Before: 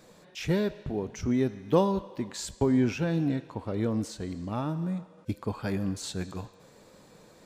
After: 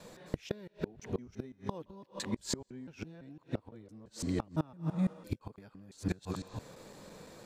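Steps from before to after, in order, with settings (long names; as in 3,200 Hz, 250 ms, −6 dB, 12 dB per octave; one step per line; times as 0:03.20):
reversed piece by piece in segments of 169 ms
gate with flip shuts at −23 dBFS, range −26 dB
level +3 dB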